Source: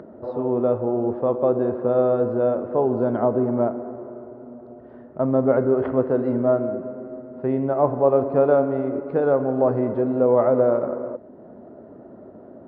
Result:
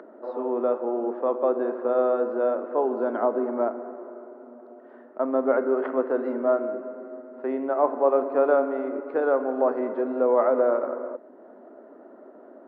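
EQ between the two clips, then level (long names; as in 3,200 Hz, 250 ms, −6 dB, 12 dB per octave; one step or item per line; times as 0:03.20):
Butterworth high-pass 250 Hz 36 dB per octave
parametric band 1,500 Hz +7.5 dB 1.8 octaves
−5.0 dB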